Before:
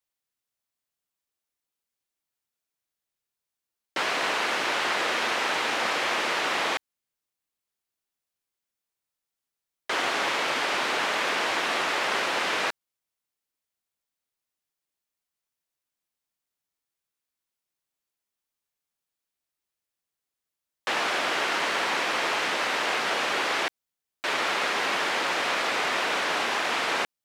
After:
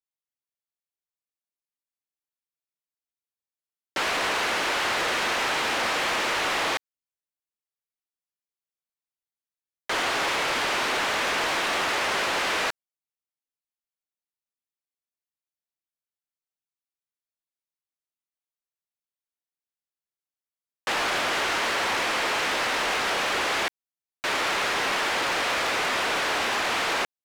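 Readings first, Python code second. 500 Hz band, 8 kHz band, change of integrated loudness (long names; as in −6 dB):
+1.0 dB, +3.0 dB, +1.0 dB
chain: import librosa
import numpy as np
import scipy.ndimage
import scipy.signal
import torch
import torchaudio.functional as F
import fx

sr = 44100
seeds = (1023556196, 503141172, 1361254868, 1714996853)

y = fx.leveller(x, sr, passes=3)
y = F.gain(torch.from_numpy(y), -6.5).numpy()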